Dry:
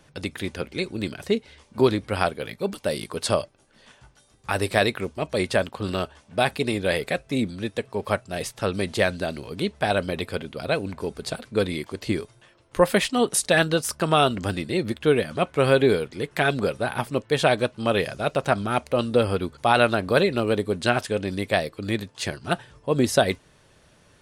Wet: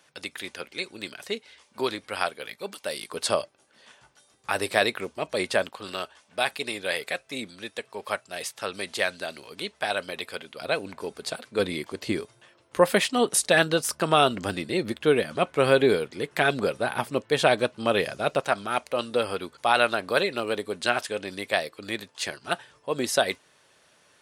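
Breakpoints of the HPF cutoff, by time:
HPF 6 dB/oct
1100 Hz
from 3.12 s 460 Hz
from 5.71 s 1100 Hz
from 10.61 s 530 Hz
from 11.59 s 240 Hz
from 18.4 s 710 Hz

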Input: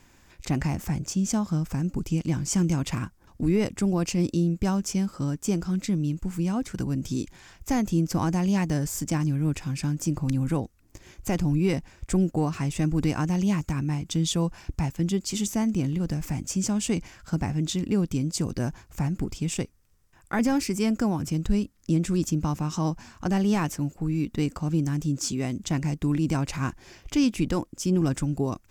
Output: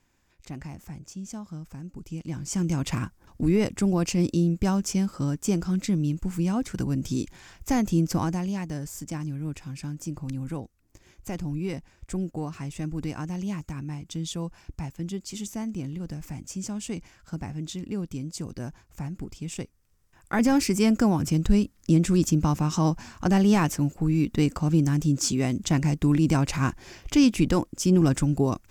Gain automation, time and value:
1.95 s -12 dB
2.91 s +1 dB
8.12 s +1 dB
8.57 s -7 dB
19.39 s -7 dB
20.62 s +3.5 dB

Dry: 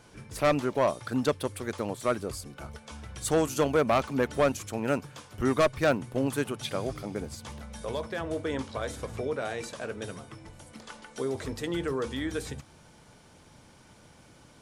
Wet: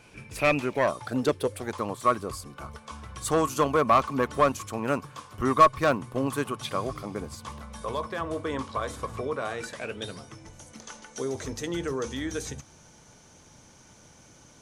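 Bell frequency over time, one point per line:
bell +15 dB 0.23 oct
0.73 s 2500 Hz
1.32 s 320 Hz
1.79 s 1100 Hz
9.49 s 1100 Hz
10.3 s 6200 Hz

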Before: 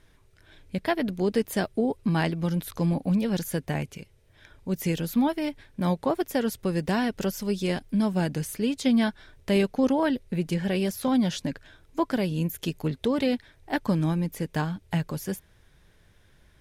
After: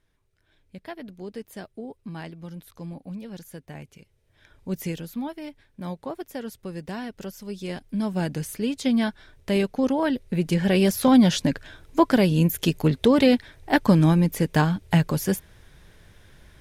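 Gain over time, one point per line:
3.66 s -12 dB
4.75 s -0.5 dB
5.12 s -8 dB
7.42 s -8 dB
8.24 s 0 dB
9.95 s 0 dB
10.9 s +7.5 dB

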